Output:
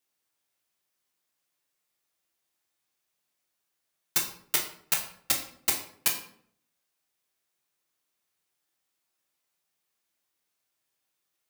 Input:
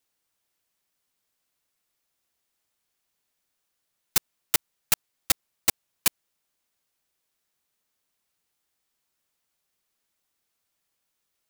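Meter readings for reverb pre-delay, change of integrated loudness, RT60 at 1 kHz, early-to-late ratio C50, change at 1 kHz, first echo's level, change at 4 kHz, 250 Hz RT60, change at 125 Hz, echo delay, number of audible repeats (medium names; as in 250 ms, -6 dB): 9 ms, -2.0 dB, 0.55 s, 8.0 dB, -2.0 dB, no echo, -2.0 dB, 0.70 s, -4.0 dB, no echo, no echo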